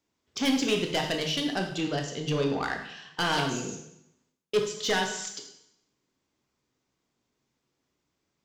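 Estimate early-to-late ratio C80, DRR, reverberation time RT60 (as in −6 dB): 9.5 dB, 3.0 dB, 0.80 s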